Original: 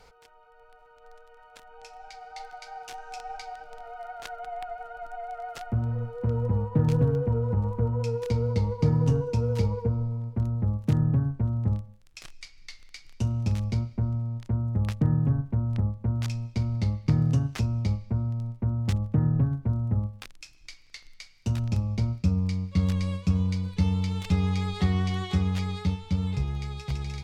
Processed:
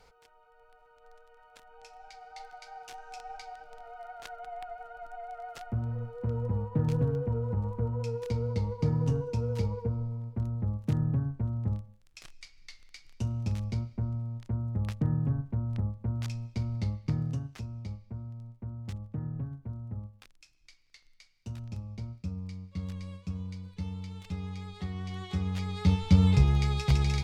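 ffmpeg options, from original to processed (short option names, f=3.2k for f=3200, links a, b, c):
-af "volume=14dB,afade=t=out:st=16.85:d=0.68:silence=0.421697,afade=t=in:st=24.95:d=0.8:silence=0.354813,afade=t=in:st=25.75:d=0.27:silence=0.316228"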